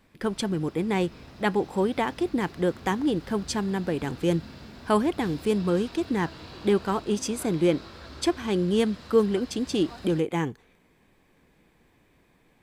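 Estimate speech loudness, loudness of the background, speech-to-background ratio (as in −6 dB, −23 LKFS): −27.0 LKFS, −45.0 LKFS, 18.0 dB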